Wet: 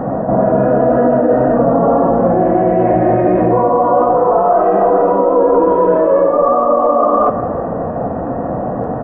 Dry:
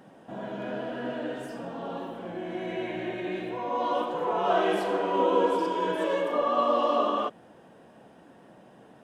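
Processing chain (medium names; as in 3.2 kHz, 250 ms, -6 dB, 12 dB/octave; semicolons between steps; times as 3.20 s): low-pass 1.2 kHz 24 dB/octave; comb 1.6 ms, depth 38%; pre-echo 198 ms -17 dB; reverse; compression 8:1, threshold -41 dBFS, peak gain reduction 21.5 dB; reverse; bass shelf 69 Hz +10 dB; on a send at -9 dB: reverberation RT60 2.2 s, pre-delay 3 ms; on the sum: loudness maximiser +34.5 dB; trim -2 dB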